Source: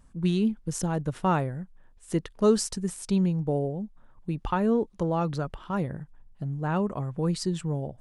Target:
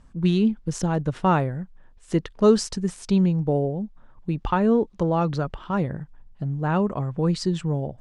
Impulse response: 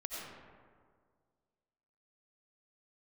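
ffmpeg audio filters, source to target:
-af "lowpass=6.1k,volume=4.5dB"

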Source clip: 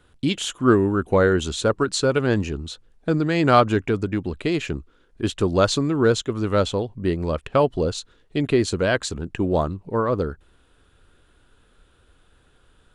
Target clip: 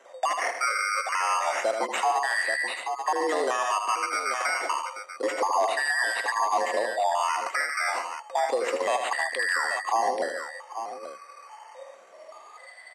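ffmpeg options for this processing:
-af "afftfilt=real='real(if(lt(b,272),68*(eq(floor(b/68),0)*3+eq(floor(b/68),1)*2+eq(floor(b/68),2)*1+eq(floor(b/68),3)*0)+mod(b,68),b),0)':imag='imag(if(lt(b,272),68*(eq(floor(b/68),0)*3+eq(floor(b/68),1)*2+eq(floor(b/68),2)*1+eq(floor(b/68),3)*0)+mod(b,68),b),0)':win_size=2048:overlap=0.75,acrusher=samples=10:mix=1:aa=0.000001:lfo=1:lforange=6:lforate=0.29,acompressor=threshold=-36dB:ratio=2,aecho=1:1:79|142|833:0.376|0.237|0.251,deesser=0.4,highpass=340,equalizer=f=400:t=q:w=4:g=8,equalizer=f=570:t=q:w=4:g=9,equalizer=f=2.9k:t=q:w=4:g=-6,equalizer=f=4.7k:t=q:w=4:g=-6,lowpass=f=8.7k:w=0.5412,lowpass=f=8.7k:w=1.3066,aecho=1:1:1.1:0.35,afreqshift=130,alimiter=limit=-22dB:level=0:latency=1:release=156,volume=6.5dB"

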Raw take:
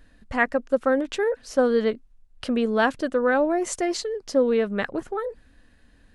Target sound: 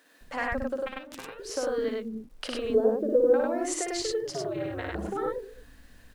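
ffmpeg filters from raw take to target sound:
-filter_complex "[0:a]acompressor=threshold=-28dB:ratio=8,asettb=1/sr,asplit=3[a][b][c];[a]atrim=end=2.744[d];[b]atrim=start=2.74:end=3.34,asetpts=PTS-STARTPTS,afade=t=in:d=0.004:c=qsin,afade=t=out:st=0.596:d=0.004:c=qsin,lowpass=f=460:t=q:w=4.9[e];[c]atrim=start=3.336[f];[d][e]acrossfade=d=0.004:c1=hsin:c2=qsin[g];[g][f]acrossfade=d=0.004:c1=qsin:c2=hsin,acrusher=bits=10:mix=0:aa=0.000001,acrossover=split=290[h][i];[h]adelay=210[j];[j][i]amix=inputs=2:normalize=0,asplit=3[k][l][m];[k]afade=t=out:st=0.8:d=0.02[n];[l]aeval=exprs='0.106*(cos(1*acos(clip(val(0)/0.106,-1,1)))-cos(1*PI/2))+0.0473*(cos(3*acos(clip(val(0)/0.106,-1,1)))-cos(3*PI/2))':c=same,afade=t=in:st=0.8:d=0.02,afade=t=out:st=1.37:d=0.02[o];[m]afade=t=in:st=1.37:d=0.02[p];[n][o][p]amix=inputs=3:normalize=0,asplit=3[q][r][s];[q]afade=t=out:st=4.2:d=0.02[t];[r]aeval=exprs='val(0)*sin(2*PI*130*n/s)':c=same,afade=t=in:st=4.2:d=0.02,afade=t=out:st=4.97:d=0.02[u];[s]afade=t=in:st=4.97:d=0.02[v];[t][u][v]amix=inputs=3:normalize=0,asplit=2[w][x];[x]aecho=0:1:58.31|99.13:0.631|0.891[y];[w][y]amix=inputs=2:normalize=0"

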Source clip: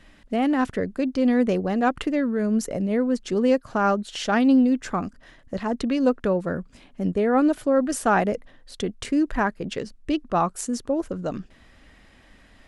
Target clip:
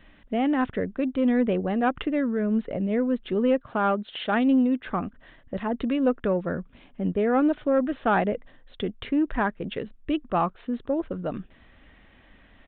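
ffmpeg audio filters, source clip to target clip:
-filter_complex "[0:a]asettb=1/sr,asplit=3[a][b][c];[a]atrim=end=3.664[d];[b]atrim=start=3.66:end=4.87,asetpts=PTS-STARTPTS,afade=t=in:d=0.004:c=qsin,afade=t=out:st=1.206:d=0.004:c=qsin,highpass=f=140:p=1[e];[c]atrim=start=4.866[f];[d][e]acrossfade=d=0.004:c1=hsin:c2=qsin[g];[g][f]acrossfade=d=0.004:c1=qsin:c2=hsin,acontrast=81,aresample=8000,aresample=44100,volume=-8.5dB"

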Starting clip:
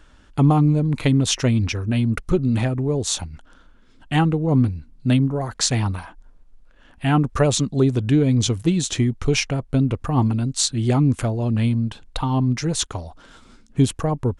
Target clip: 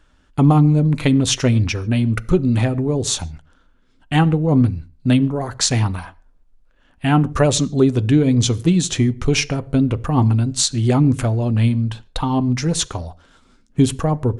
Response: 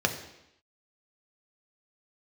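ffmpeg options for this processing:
-filter_complex "[0:a]agate=range=-8dB:threshold=-37dB:ratio=16:detection=peak,asplit=2[a][b];[1:a]atrim=start_sample=2205,atrim=end_sample=6615,adelay=8[c];[b][c]afir=irnorm=-1:irlink=0,volume=-23dB[d];[a][d]amix=inputs=2:normalize=0,volume=2.5dB"

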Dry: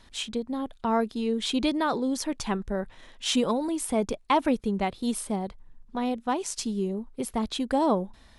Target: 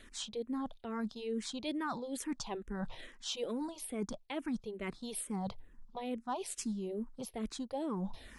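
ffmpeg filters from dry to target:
-filter_complex "[0:a]equalizer=f=62:t=o:w=0.94:g=-7,areverse,acompressor=threshold=-41dB:ratio=4,areverse,asplit=2[a][b];[b]afreqshift=-2.3[c];[a][c]amix=inputs=2:normalize=1,volume=6dB"

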